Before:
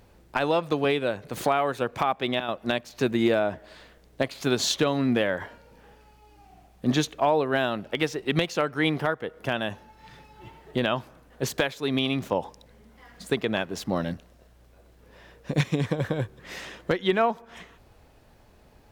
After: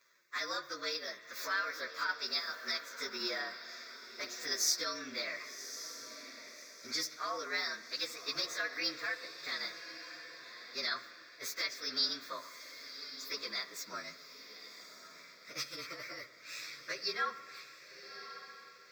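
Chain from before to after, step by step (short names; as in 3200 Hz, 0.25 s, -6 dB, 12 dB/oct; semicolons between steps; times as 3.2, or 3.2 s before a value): inharmonic rescaling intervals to 113%; HPF 1200 Hz 12 dB/oct; fixed phaser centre 3000 Hz, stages 6; wow and flutter 27 cents; dynamic EQ 2000 Hz, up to -6 dB, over -49 dBFS, Q 1.2; diffused feedback echo 1.133 s, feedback 41%, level -11 dB; on a send at -13.5 dB: reverb RT60 1.4 s, pre-delay 49 ms; on the sum: gain +3.5 dB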